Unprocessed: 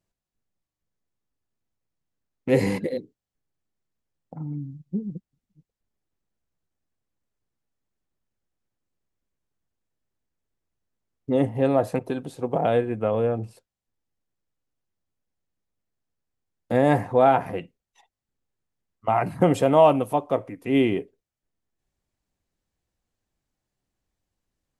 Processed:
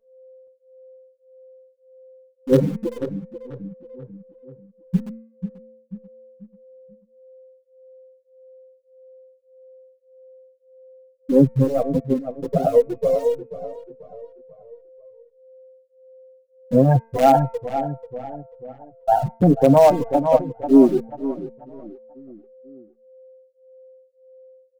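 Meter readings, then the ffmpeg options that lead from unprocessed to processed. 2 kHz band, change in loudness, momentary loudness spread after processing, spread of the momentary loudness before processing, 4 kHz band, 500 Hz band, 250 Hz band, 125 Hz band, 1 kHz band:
−6.0 dB, +4.0 dB, 21 LU, 16 LU, can't be measured, +4.0 dB, +6.5 dB, +6.5 dB, +3.0 dB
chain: -filter_complex "[0:a]afftfilt=real='re*gte(hypot(re,im),0.398)':imag='im*gte(hypot(re,im),0.398)':win_size=1024:overlap=0.75,asplit=2[link_01][link_02];[link_02]acrusher=bits=3:dc=4:mix=0:aa=0.000001,volume=-11dB[link_03];[link_01][link_03]amix=inputs=2:normalize=0,equalizer=frequency=160:width=1.3:gain=7.5,aeval=exprs='val(0)+0.00282*sin(2*PI*520*n/s)':channel_layout=same,bandreject=frequency=227.1:width_type=h:width=4,bandreject=frequency=454.2:width_type=h:width=4,bandreject=frequency=681.3:width_type=h:width=4,bandreject=frequency=908.4:width_type=h:width=4,bandreject=frequency=1135.5:width_type=h:width=4,bandreject=frequency=1362.6:width_type=h:width=4,bandreject=frequency=1589.7:width_type=h:width=4,bandreject=frequency=1816.8:width_type=h:width=4,bandreject=frequency=2043.9:width_type=h:width=4,bandreject=frequency=2271:width_type=h:width=4,bandreject=frequency=2498.1:width_type=h:width=4,asoftclip=type=hard:threshold=-3dB,asplit=2[link_04][link_05];[link_05]adelay=488,lowpass=frequency=2200:poles=1,volume=-12dB,asplit=2[link_06][link_07];[link_07]adelay=488,lowpass=frequency=2200:poles=1,volume=0.44,asplit=2[link_08][link_09];[link_09]adelay=488,lowpass=frequency=2200:poles=1,volume=0.44,asplit=2[link_10][link_11];[link_11]adelay=488,lowpass=frequency=2200:poles=1,volume=0.44[link_12];[link_04][link_06][link_08][link_10][link_12]amix=inputs=5:normalize=0,alimiter=level_in=8.5dB:limit=-1dB:release=50:level=0:latency=1,asplit=2[link_13][link_14];[link_14]adelay=6.4,afreqshift=-1.7[link_15];[link_13][link_15]amix=inputs=2:normalize=1,volume=-1dB"

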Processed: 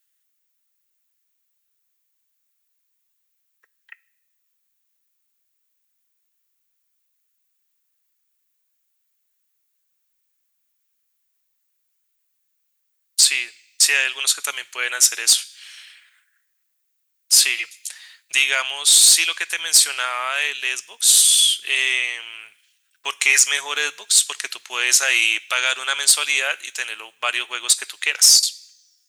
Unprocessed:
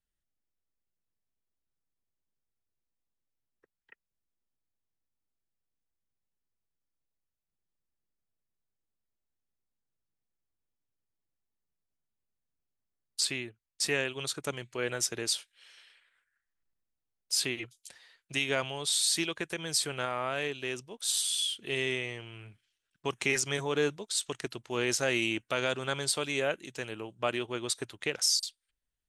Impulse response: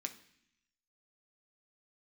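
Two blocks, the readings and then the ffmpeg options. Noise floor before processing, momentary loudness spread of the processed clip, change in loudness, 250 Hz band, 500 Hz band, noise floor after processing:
below −85 dBFS, 15 LU, +14.5 dB, below −10 dB, −4.5 dB, −72 dBFS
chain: -filter_complex "[0:a]acontrast=72,highpass=1400,asplit=2[link_01][link_02];[link_02]aemphasis=mode=production:type=riaa[link_03];[1:a]atrim=start_sample=2205[link_04];[link_03][link_04]afir=irnorm=-1:irlink=0,volume=-10dB[link_05];[link_01][link_05]amix=inputs=2:normalize=0,acontrast=80"

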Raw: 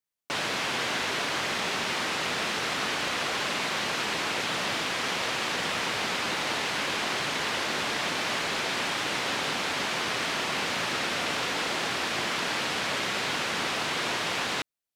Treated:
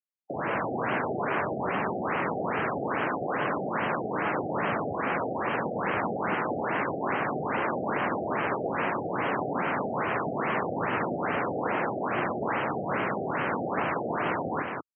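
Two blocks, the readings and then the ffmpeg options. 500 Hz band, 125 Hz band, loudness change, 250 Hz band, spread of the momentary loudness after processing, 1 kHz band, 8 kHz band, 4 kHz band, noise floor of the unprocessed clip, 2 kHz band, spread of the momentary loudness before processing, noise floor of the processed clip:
+5.0 dB, +5.0 dB, −1.5 dB, +5.5 dB, 1 LU, +3.0 dB, below −40 dB, −19.5 dB, −31 dBFS, −3.5 dB, 0 LU, −34 dBFS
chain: -filter_complex "[0:a]afwtdn=0.0251,equalizer=frequency=5200:width_type=o:width=1.9:gain=-8,acrossover=split=290|1800[link_01][link_02][link_03];[link_03]alimiter=level_in=12.5dB:limit=-24dB:level=0:latency=1,volume=-12.5dB[link_04];[link_01][link_02][link_04]amix=inputs=3:normalize=0,aecho=1:1:69.97|186.6:0.316|0.631,afftfilt=real='re*lt(b*sr/1024,780*pow(3300/780,0.5+0.5*sin(2*PI*2.4*pts/sr)))':imag='im*lt(b*sr/1024,780*pow(3300/780,0.5+0.5*sin(2*PI*2.4*pts/sr)))':win_size=1024:overlap=0.75,volume=4dB"

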